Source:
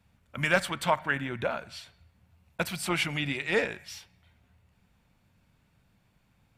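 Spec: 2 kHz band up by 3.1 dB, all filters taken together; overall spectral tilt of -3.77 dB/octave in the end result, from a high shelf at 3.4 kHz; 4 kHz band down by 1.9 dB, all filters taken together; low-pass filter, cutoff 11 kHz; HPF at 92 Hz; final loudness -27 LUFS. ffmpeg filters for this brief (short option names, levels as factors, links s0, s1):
-af "highpass=92,lowpass=11000,equalizer=f=2000:t=o:g=4.5,highshelf=f=3400:g=4.5,equalizer=f=4000:t=o:g=-8,volume=1.06"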